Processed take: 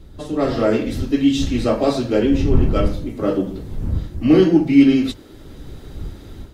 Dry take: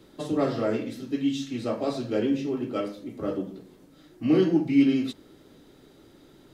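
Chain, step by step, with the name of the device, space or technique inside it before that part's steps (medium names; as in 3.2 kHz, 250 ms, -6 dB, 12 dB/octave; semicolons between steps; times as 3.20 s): smartphone video outdoors (wind noise 83 Hz -33 dBFS; level rider gain up to 10 dB; trim +1 dB; AAC 64 kbps 44.1 kHz)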